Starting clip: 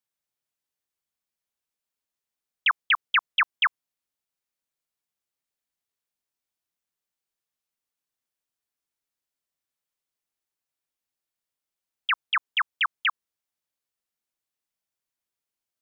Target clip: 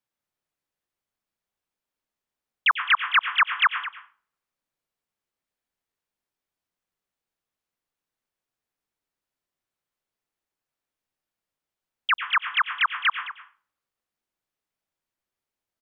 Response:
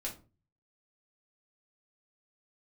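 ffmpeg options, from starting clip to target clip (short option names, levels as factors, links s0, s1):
-filter_complex "[0:a]highshelf=f=3100:g=-10,aecho=1:1:214:0.188,asplit=2[s0][s1];[1:a]atrim=start_sample=2205,asetrate=29988,aresample=44100,adelay=92[s2];[s1][s2]afir=irnorm=-1:irlink=0,volume=0.224[s3];[s0][s3]amix=inputs=2:normalize=0,volume=1.78"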